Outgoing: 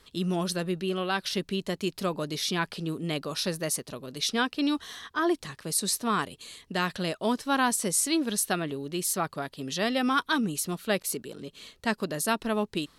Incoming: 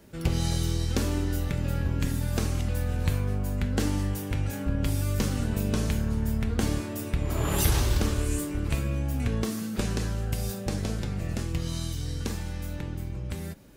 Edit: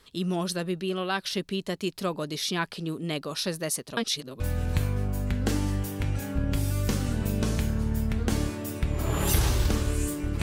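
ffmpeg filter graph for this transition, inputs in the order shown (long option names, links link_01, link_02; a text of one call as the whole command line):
ffmpeg -i cue0.wav -i cue1.wav -filter_complex "[0:a]apad=whole_dur=10.42,atrim=end=10.42,asplit=2[link_01][link_02];[link_01]atrim=end=3.972[link_03];[link_02]atrim=start=3.968:end=4.402,asetpts=PTS-STARTPTS,areverse[link_04];[1:a]atrim=start=2.708:end=8.73[link_05];[link_03][link_04]acrossfade=duration=0.004:curve1=hsin:curve2=hsin[link_06];[link_06][link_05]acrossfade=duration=0.004:curve1=hsin:curve2=hsin" out.wav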